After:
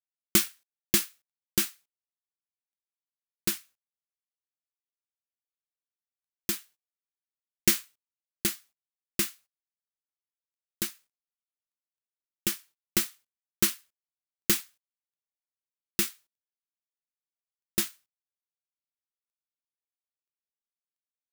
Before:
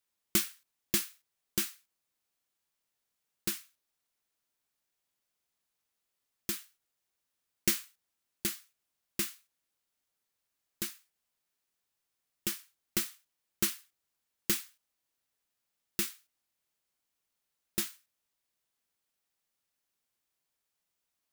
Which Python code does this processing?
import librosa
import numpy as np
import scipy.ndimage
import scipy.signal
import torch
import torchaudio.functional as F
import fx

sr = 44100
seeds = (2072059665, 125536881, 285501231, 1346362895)

y = fx.law_mismatch(x, sr, coded='A')
y = F.gain(torch.from_numpy(y), 6.5).numpy()